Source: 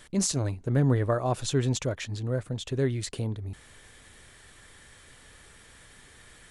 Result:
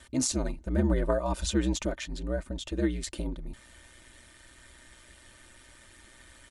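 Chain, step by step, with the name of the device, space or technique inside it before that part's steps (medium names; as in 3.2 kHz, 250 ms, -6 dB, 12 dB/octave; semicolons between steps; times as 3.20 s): 0.91–1.54 s: comb 2 ms, depth 55%; ring-modulated robot voice (ring modulator 62 Hz; comb 3.3 ms, depth 63%)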